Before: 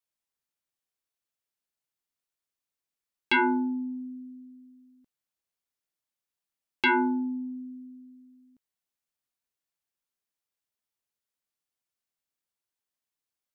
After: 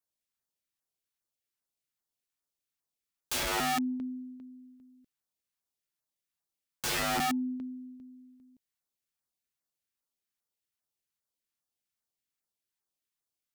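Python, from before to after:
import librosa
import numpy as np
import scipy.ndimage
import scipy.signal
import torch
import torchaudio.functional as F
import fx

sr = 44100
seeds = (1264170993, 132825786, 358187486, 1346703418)

y = fx.dynamic_eq(x, sr, hz=230.0, q=4.0, threshold_db=-42.0, ratio=4.0, max_db=4)
y = fx.filter_lfo_notch(y, sr, shape='saw_down', hz=2.5, low_hz=390.0, high_hz=3500.0, q=0.96)
y = (np.mod(10.0 ** (26.0 / 20.0) * y + 1.0, 2.0) - 1.0) / 10.0 ** (26.0 / 20.0)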